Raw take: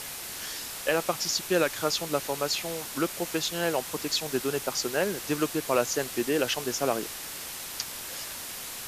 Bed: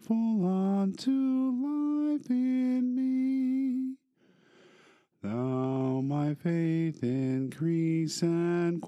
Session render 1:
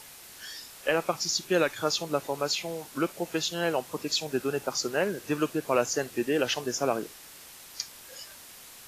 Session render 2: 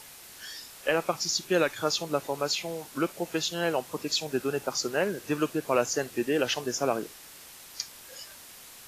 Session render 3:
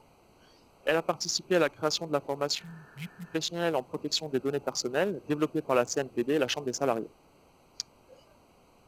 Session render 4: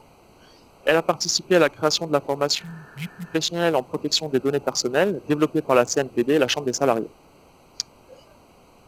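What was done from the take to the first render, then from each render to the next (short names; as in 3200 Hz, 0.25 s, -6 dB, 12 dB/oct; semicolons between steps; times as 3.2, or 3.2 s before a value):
noise print and reduce 10 dB
nothing audible
Wiener smoothing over 25 samples; 2.61–3.33 spectral repair 220–1800 Hz before
gain +8 dB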